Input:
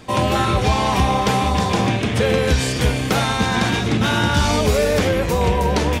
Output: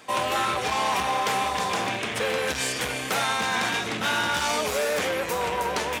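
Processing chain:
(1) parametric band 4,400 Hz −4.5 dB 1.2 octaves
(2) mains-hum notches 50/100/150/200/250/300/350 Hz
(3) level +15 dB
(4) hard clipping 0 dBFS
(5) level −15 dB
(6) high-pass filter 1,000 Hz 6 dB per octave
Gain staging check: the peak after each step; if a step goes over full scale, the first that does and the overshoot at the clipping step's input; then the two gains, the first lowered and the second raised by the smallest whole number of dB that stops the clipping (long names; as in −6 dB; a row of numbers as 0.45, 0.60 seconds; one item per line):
−6.0, −6.0, +9.0, 0.0, −15.0, −12.0 dBFS
step 3, 9.0 dB
step 3 +6 dB, step 5 −6 dB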